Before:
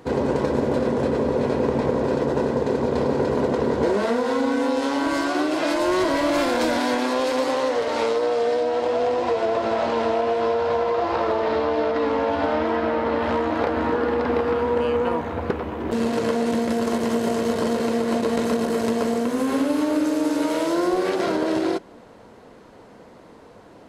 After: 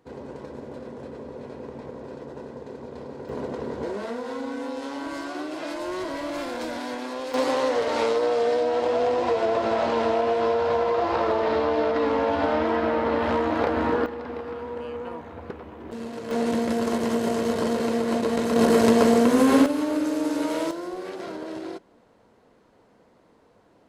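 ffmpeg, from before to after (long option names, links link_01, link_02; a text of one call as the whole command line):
ffmpeg -i in.wav -af "asetnsamples=nb_out_samples=441:pad=0,asendcmd='3.29 volume volume -10dB;7.34 volume volume -1dB;14.06 volume volume -12dB;16.31 volume volume -2dB;18.56 volume volume 5dB;19.66 volume volume -3.5dB;20.71 volume volume -12dB',volume=-16.5dB" out.wav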